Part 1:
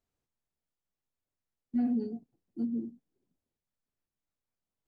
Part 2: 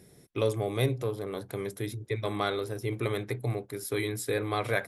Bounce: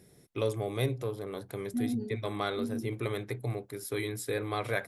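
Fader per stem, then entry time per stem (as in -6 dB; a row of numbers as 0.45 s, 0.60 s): -3.0 dB, -3.0 dB; 0.00 s, 0.00 s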